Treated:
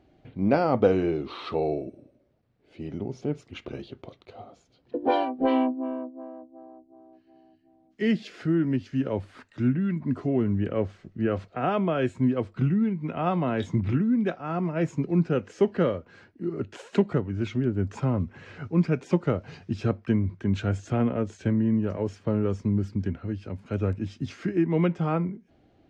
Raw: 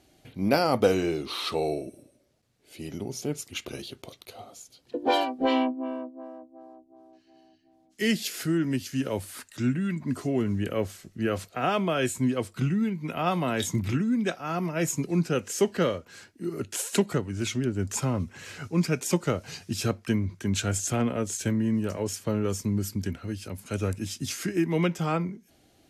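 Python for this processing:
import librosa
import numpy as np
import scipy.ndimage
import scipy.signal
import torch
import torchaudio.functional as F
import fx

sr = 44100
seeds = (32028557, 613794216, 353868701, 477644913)

y = fx.spacing_loss(x, sr, db_at_10k=36)
y = F.gain(torch.from_numpy(y), 3.0).numpy()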